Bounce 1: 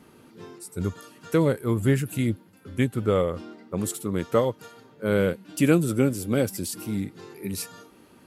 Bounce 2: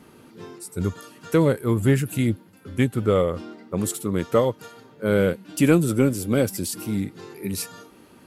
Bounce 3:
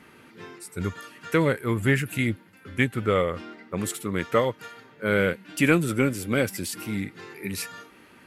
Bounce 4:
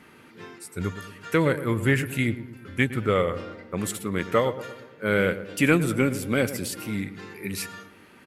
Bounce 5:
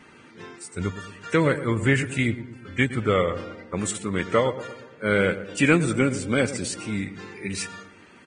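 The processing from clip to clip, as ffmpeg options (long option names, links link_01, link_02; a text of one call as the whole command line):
ffmpeg -i in.wav -af "acontrast=39,volume=-2.5dB" out.wav
ffmpeg -i in.wav -af "equalizer=frequency=2000:width_type=o:width=1.4:gain=12,volume=-4.5dB" out.wav
ffmpeg -i in.wav -filter_complex "[0:a]asplit=2[link_01][link_02];[link_02]adelay=113,lowpass=frequency=1300:poles=1,volume=-12dB,asplit=2[link_03][link_04];[link_04]adelay=113,lowpass=frequency=1300:poles=1,volume=0.55,asplit=2[link_05][link_06];[link_06]adelay=113,lowpass=frequency=1300:poles=1,volume=0.55,asplit=2[link_07][link_08];[link_08]adelay=113,lowpass=frequency=1300:poles=1,volume=0.55,asplit=2[link_09][link_10];[link_10]adelay=113,lowpass=frequency=1300:poles=1,volume=0.55,asplit=2[link_11][link_12];[link_12]adelay=113,lowpass=frequency=1300:poles=1,volume=0.55[link_13];[link_01][link_03][link_05][link_07][link_09][link_11][link_13]amix=inputs=7:normalize=0" out.wav
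ffmpeg -i in.wav -af "volume=1dB" -ar 22050 -c:a libvorbis -b:a 16k out.ogg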